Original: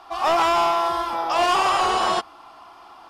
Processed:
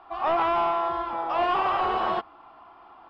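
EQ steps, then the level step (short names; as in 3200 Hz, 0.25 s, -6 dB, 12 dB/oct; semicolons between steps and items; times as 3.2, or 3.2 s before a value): air absorption 440 m; -2.5 dB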